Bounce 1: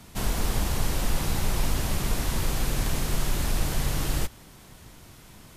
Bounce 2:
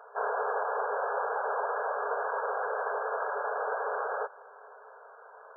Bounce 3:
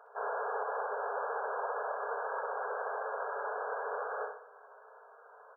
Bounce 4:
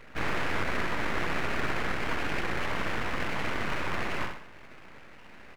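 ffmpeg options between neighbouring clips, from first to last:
-af "afftfilt=real='re*between(b*sr/4096,400,1700)':imag='im*between(b*sr/4096,400,1700)':win_size=4096:overlap=0.75,volume=7dB"
-af "aecho=1:1:64|128|192|256|320:0.531|0.239|0.108|0.0484|0.0218,volume=-6dB"
-af "aeval=exprs='abs(val(0))':c=same,volume=8.5dB"

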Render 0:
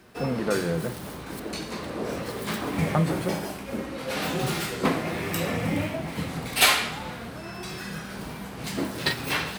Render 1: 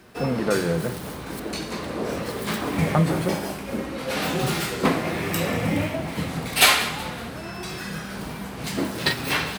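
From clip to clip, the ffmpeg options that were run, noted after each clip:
-af "aecho=1:1:187|374|561|748:0.133|0.0613|0.0282|0.013,volume=3dB"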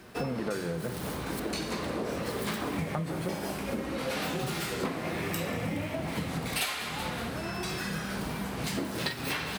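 -af "acompressor=threshold=-29dB:ratio=10"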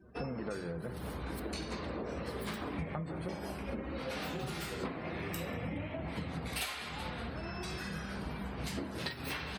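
-af "afftdn=nr=29:nf=-48,equalizer=f=66:w=3:g=12.5,volume=-6.5dB"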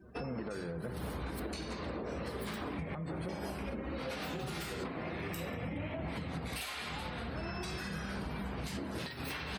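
-af "alimiter=level_in=8.5dB:limit=-24dB:level=0:latency=1:release=129,volume=-8.5dB,volume=2.5dB"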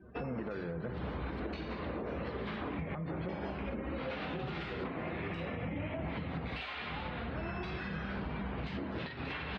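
-af "lowpass=f=3.4k:w=0.5412,lowpass=f=3.4k:w=1.3066,volume=1dB"

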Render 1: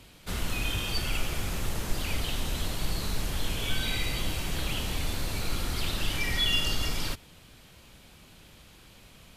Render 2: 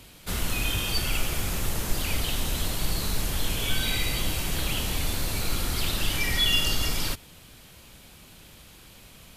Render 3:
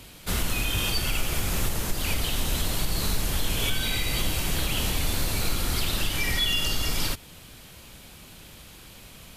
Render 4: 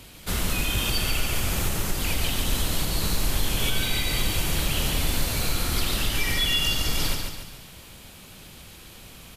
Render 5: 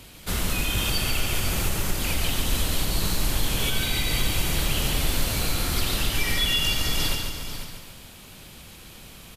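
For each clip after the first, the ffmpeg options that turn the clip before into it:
-af "highshelf=f=8.4k:g=8,volume=2.5dB"
-af "alimiter=limit=-18dB:level=0:latency=1:release=218,volume=3dB"
-af "aecho=1:1:142|284|426|568|710|852:0.562|0.259|0.119|0.0547|0.0252|0.0116"
-af "aecho=1:1:494:0.316"

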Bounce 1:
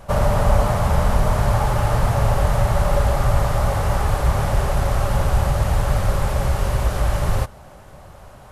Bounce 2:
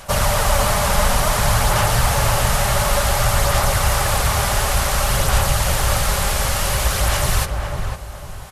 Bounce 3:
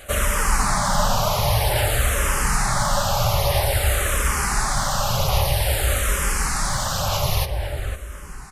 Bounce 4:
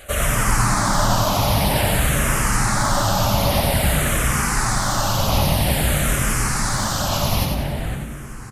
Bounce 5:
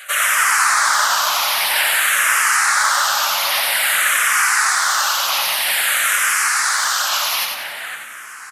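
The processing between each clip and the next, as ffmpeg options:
-filter_complex "[0:a]aphaser=in_gain=1:out_gain=1:delay=5:decay=0.3:speed=0.56:type=sinusoidal,tiltshelf=f=1.4k:g=-9.5,asplit=2[a][b];[b]adelay=503,lowpass=f=1.2k:p=1,volume=-3.5dB,asplit=2[c][d];[d]adelay=503,lowpass=f=1.2k:p=1,volume=0.34,asplit=2[e][f];[f]adelay=503,lowpass=f=1.2k:p=1,volume=0.34,asplit=2[g][h];[h]adelay=503,lowpass=f=1.2k:p=1,volume=0.34[i];[a][c][e][g][i]amix=inputs=5:normalize=0,volume=5dB"
-filter_complex "[0:a]asplit=2[a][b];[b]afreqshift=-0.51[c];[a][c]amix=inputs=2:normalize=1"
-filter_complex "[0:a]asplit=6[a][b][c][d][e][f];[b]adelay=91,afreqshift=86,volume=-4.5dB[g];[c]adelay=182,afreqshift=172,volume=-11.8dB[h];[d]adelay=273,afreqshift=258,volume=-19.2dB[i];[e]adelay=364,afreqshift=344,volume=-26.5dB[j];[f]adelay=455,afreqshift=430,volume=-33.8dB[k];[a][g][h][i][j][k]amix=inputs=6:normalize=0"
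-af "highpass=f=1.5k:t=q:w=1.7,volume=5.5dB"

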